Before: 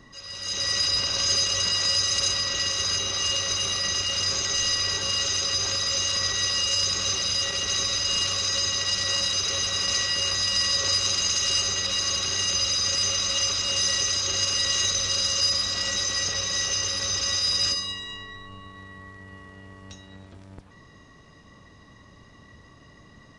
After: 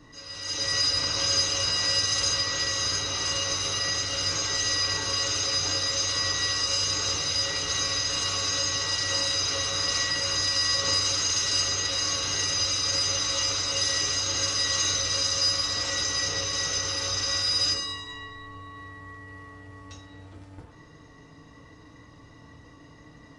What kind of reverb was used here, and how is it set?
feedback delay network reverb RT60 0.55 s, low-frequency decay 0.8×, high-frequency decay 0.5×, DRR −4 dB
level −4.5 dB

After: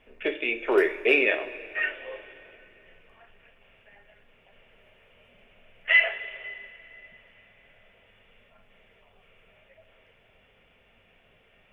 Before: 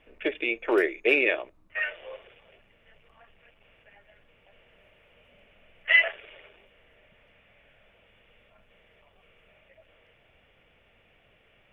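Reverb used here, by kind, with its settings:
coupled-rooms reverb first 0.34 s, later 3.5 s, from −18 dB, DRR 5 dB

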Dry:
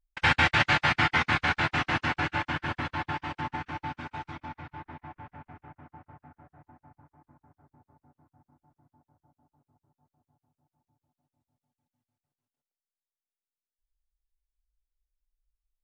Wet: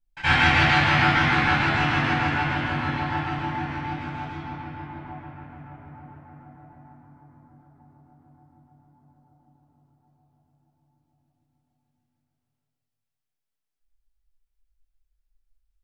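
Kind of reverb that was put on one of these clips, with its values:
rectangular room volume 1,000 cubic metres, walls mixed, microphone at 8.2 metres
level −9 dB

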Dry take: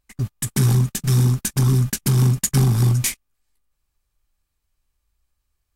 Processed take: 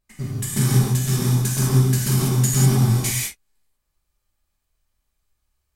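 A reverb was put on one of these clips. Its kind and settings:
reverb whose tail is shaped and stops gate 220 ms flat, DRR −7 dB
level −6 dB

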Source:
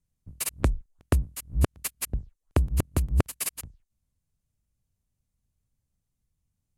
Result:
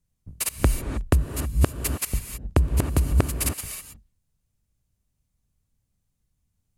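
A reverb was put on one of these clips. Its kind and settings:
reverb whose tail is shaped and stops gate 340 ms rising, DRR 6.5 dB
level +3.5 dB

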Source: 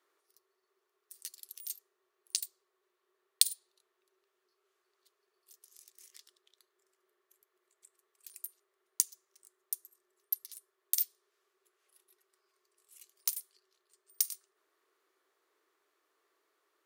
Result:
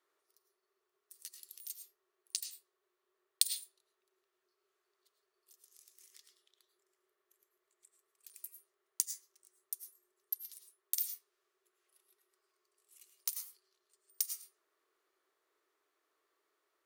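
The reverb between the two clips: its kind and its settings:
comb and all-pass reverb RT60 0.48 s, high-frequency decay 0.4×, pre-delay 65 ms, DRR 6.5 dB
level −4.5 dB

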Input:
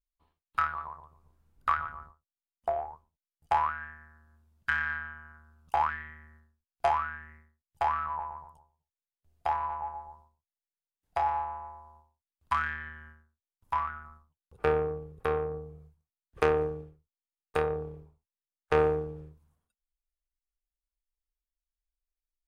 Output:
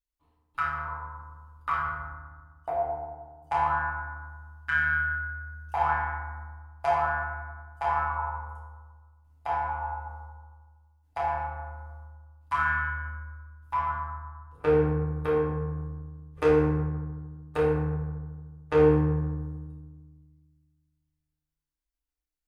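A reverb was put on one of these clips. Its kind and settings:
feedback delay network reverb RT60 1.4 s, low-frequency decay 1.55×, high-frequency decay 0.45×, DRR −6.5 dB
level −5.5 dB

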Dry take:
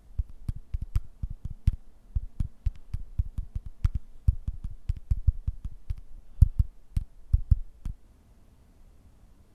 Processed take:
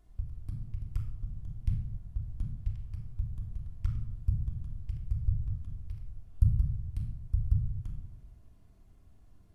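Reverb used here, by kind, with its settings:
rectangular room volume 2,400 cubic metres, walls furnished, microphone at 3.2 metres
level −9.5 dB

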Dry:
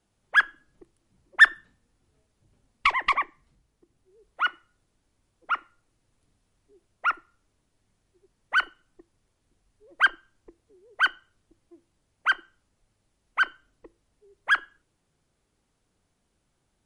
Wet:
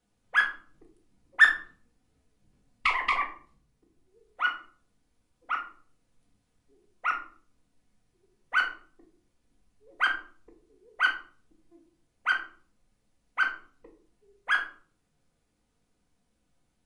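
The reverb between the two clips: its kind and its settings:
rectangular room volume 380 cubic metres, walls furnished, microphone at 1.9 metres
level −5 dB

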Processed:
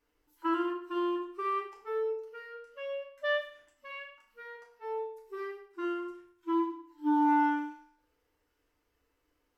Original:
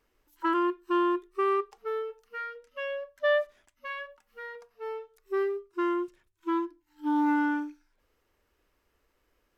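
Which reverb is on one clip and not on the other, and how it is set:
feedback delay network reverb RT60 0.61 s, low-frequency decay 0.95×, high-frequency decay 0.9×, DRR −3.5 dB
level −9 dB

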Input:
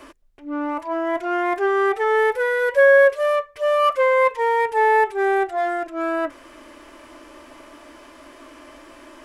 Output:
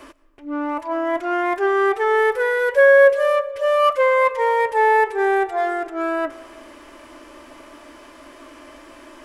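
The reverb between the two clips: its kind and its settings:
comb and all-pass reverb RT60 2.1 s, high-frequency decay 0.3×, pre-delay 75 ms, DRR 18 dB
level +1 dB

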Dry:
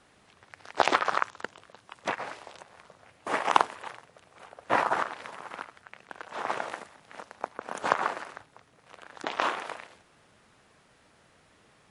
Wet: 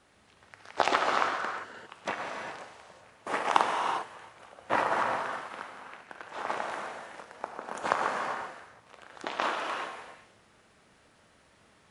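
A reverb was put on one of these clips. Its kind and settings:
reverb whose tail is shaped and stops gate 430 ms flat, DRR 1 dB
level −3 dB

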